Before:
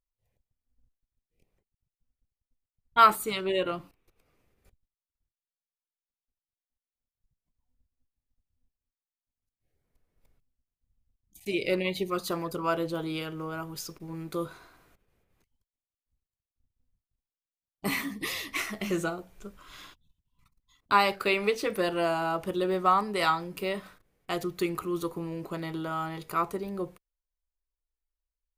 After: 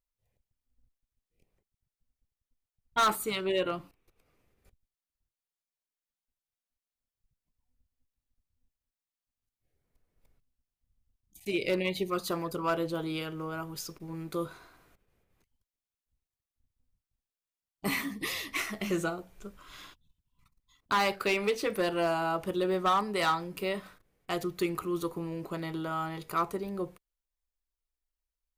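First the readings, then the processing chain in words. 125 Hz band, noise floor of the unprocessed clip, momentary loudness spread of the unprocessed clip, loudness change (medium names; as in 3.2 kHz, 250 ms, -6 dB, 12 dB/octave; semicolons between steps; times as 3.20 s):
-1.0 dB, under -85 dBFS, 15 LU, -2.5 dB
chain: overload inside the chain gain 20.5 dB; trim -1 dB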